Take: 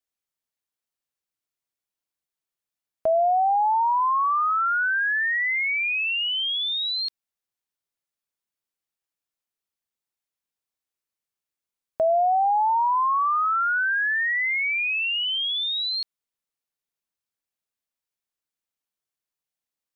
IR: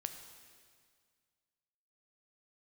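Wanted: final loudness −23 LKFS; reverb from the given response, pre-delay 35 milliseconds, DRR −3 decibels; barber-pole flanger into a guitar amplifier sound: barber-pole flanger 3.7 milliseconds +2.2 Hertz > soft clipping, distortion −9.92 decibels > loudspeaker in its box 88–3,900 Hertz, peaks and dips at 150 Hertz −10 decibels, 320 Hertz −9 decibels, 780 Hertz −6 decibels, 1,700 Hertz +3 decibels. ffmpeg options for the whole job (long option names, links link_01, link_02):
-filter_complex "[0:a]asplit=2[link_01][link_02];[1:a]atrim=start_sample=2205,adelay=35[link_03];[link_02][link_03]afir=irnorm=-1:irlink=0,volume=4.5dB[link_04];[link_01][link_04]amix=inputs=2:normalize=0,asplit=2[link_05][link_06];[link_06]adelay=3.7,afreqshift=2.2[link_07];[link_05][link_07]amix=inputs=2:normalize=1,asoftclip=threshold=-21.5dB,highpass=88,equalizer=frequency=150:width_type=q:width=4:gain=-10,equalizer=frequency=320:width_type=q:width=4:gain=-9,equalizer=frequency=780:width_type=q:width=4:gain=-6,equalizer=frequency=1700:width_type=q:width=4:gain=3,lowpass=frequency=3900:width=0.5412,lowpass=frequency=3900:width=1.3066,volume=2dB"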